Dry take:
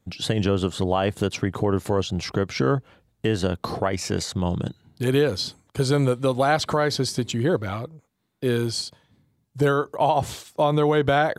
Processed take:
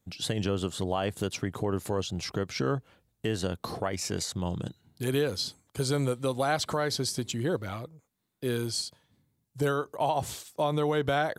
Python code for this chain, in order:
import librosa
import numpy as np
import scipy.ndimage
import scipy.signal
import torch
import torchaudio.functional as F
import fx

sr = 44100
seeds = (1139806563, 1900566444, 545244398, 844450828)

y = fx.high_shelf(x, sr, hz=5800.0, db=9.5)
y = y * 10.0 ** (-7.5 / 20.0)